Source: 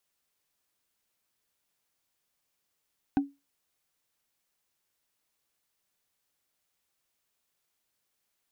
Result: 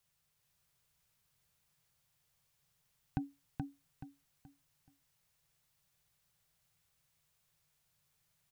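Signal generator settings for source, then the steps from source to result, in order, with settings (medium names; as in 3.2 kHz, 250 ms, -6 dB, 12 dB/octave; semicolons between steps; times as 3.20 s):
wood hit, lowest mode 280 Hz, decay 0.23 s, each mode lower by 8 dB, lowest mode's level -18 dB
resonant low shelf 190 Hz +9 dB, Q 3; peak limiter -21 dBFS; on a send: feedback delay 427 ms, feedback 32%, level -3.5 dB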